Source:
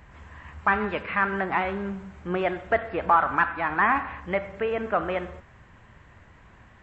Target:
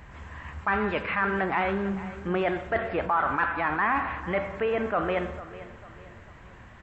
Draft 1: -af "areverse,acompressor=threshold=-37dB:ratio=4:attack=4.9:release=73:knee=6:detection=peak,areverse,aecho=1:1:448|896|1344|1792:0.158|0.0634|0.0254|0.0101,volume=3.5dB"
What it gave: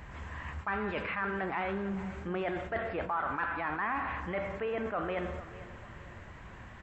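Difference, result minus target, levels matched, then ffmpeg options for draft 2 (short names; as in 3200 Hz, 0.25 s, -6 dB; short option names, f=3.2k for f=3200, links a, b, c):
compressor: peak gain reduction +8 dB
-af "areverse,acompressor=threshold=-26dB:ratio=4:attack=4.9:release=73:knee=6:detection=peak,areverse,aecho=1:1:448|896|1344|1792:0.158|0.0634|0.0254|0.0101,volume=3.5dB"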